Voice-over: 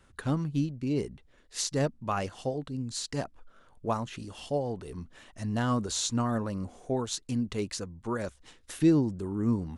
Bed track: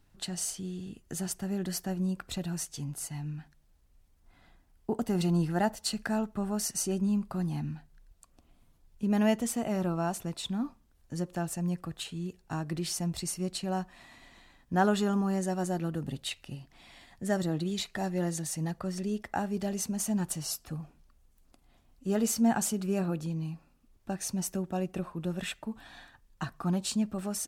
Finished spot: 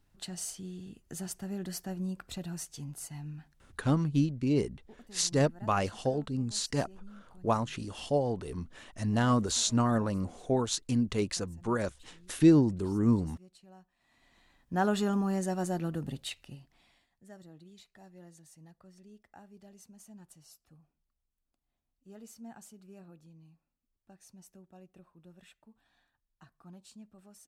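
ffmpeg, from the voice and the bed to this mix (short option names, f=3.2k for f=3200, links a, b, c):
-filter_complex "[0:a]adelay=3600,volume=2dB[a];[1:a]volume=18dB,afade=t=out:st=3.7:d=0.34:silence=0.112202,afade=t=in:st=13.99:d=1.05:silence=0.0749894,afade=t=out:st=16.03:d=1.06:silence=0.0891251[b];[a][b]amix=inputs=2:normalize=0"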